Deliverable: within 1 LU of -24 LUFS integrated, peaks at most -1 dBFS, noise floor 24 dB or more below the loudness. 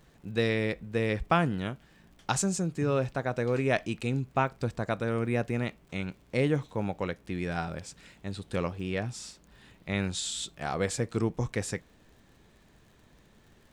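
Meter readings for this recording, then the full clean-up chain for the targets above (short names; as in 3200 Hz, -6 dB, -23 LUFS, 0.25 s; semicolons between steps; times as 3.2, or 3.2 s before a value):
ticks 47/s; loudness -31.0 LUFS; peak -10.5 dBFS; loudness target -24.0 LUFS
-> de-click; gain +7 dB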